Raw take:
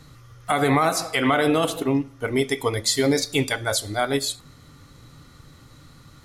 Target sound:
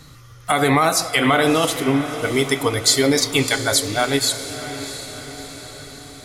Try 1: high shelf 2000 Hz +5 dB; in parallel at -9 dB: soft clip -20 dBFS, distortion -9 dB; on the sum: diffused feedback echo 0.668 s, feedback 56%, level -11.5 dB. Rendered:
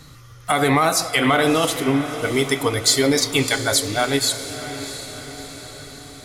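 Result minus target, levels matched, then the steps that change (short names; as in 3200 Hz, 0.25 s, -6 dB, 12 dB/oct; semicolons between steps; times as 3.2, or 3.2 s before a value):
soft clip: distortion +11 dB
change: soft clip -10.5 dBFS, distortion -20 dB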